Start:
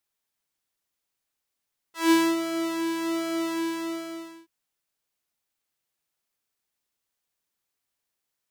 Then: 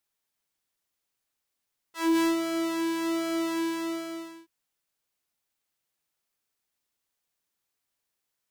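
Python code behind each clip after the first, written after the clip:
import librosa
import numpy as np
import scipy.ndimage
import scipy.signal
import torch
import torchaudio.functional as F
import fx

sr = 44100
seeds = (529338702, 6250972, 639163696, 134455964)

y = 10.0 ** (-17.5 / 20.0) * np.tanh(x / 10.0 ** (-17.5 / 20.0))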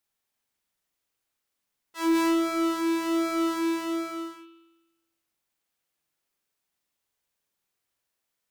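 y = fx.rev_spring(x, sr, rt60_s=1.1, pass_ms=(45,), chirp_ms=75, drr_db=3.0)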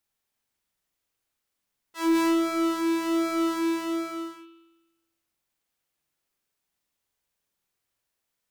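y = fx.low_shelf(x, sr, hz=150.0, db=4.5)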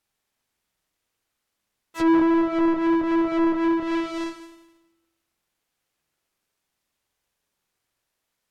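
y = fx.halfwave_hold(x, sr)
y = fx.env_lowpass_down(y, sr, base_hz=1300.0, full_db=-19.0)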